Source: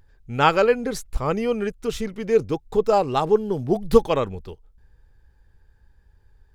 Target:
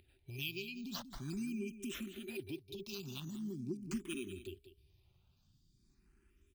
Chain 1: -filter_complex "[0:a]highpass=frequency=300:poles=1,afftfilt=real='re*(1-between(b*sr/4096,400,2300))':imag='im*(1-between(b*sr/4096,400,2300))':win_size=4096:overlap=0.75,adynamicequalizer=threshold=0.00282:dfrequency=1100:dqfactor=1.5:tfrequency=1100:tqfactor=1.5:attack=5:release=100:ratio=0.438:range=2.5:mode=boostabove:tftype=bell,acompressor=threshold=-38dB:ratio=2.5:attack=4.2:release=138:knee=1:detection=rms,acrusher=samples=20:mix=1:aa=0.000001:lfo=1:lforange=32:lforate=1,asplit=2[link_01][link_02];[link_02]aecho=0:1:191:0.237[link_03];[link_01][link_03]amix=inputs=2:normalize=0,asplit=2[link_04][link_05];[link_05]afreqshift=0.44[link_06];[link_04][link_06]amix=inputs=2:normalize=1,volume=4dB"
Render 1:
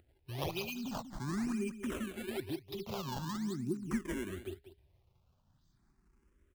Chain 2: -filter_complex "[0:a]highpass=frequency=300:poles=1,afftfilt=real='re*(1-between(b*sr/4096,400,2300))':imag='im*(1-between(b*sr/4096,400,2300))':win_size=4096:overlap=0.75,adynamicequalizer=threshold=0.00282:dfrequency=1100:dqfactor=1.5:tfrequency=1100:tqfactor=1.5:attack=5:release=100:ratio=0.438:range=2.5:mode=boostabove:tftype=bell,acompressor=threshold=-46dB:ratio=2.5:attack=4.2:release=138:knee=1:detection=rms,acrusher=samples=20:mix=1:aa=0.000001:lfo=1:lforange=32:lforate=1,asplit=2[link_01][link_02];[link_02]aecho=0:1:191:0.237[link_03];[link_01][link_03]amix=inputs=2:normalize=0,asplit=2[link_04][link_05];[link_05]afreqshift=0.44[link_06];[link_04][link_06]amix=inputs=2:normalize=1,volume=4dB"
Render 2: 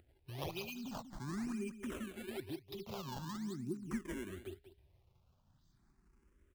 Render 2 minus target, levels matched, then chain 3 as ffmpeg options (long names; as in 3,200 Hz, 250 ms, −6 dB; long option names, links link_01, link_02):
sample-and-hold swept by an LFO: distortion +6 dB
-filter_complex "[0:a]highpass=frequency=300:poles=1,afftfilt=real='re*(1-between(b*sr/4096,400,2300))':imag='im*(1-between(b*sr/4096,400,2300))':win_size=4096:overlap=0.75,adynamicequalizer=threshold=0.00282:dfrequency=1100:dqfactor=1.5:tfrequency=1100:tqfactor=1.5:attack=5:release=100:ratio=0.438:range=2.5:mode=boostabove:tftype=bell,acompressor=threshold=-46dB:ratio=2.5:attack=4.2:release=138:knee=1:detection=rms,acrusher=samples=4:mix=1:aa=0.000001:lfo=1:lforange=6.4:lforate=1,asplit=2[link_01][link_02];[link_02]aecho=0:1:191:0.237[link_03];[link_01][link_03]amix=inputs=2:normalize=0,asplit=2[link_04][link_05];[link_05]afreqshift=0.44[link_06];[link_04][link_06]amix=inputs=2:normalize=1,volume=4dB"